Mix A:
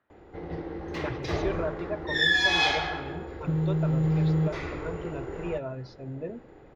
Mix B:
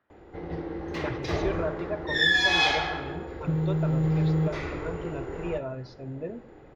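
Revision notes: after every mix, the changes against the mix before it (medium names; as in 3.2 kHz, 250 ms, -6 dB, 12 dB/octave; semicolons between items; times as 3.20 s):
reverb: on, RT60 0.50 s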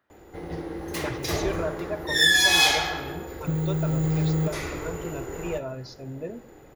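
master: remove distance through air 210 m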